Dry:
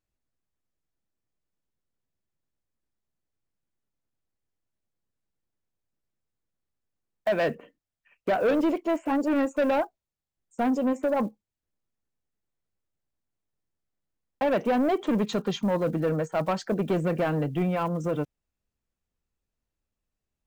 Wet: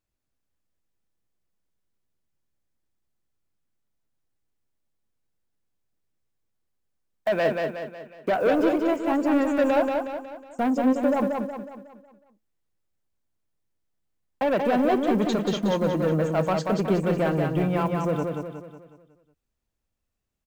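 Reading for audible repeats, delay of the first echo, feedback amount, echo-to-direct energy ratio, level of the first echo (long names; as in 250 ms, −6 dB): 5, 183 ms, 46%, −3.0 dB, −4.0 dB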